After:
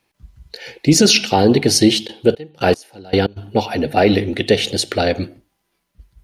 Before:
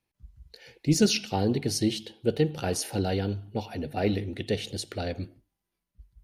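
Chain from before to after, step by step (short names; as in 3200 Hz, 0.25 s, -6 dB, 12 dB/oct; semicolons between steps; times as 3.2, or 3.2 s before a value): low shelf 180 Hz -11.5 dB; 2.06–3.36 step gate "x...x.xx.." 115 bpm -24 dB; high shelf 7100 Hz -6 dB; maximiser +18.5 dB; gain -1 dB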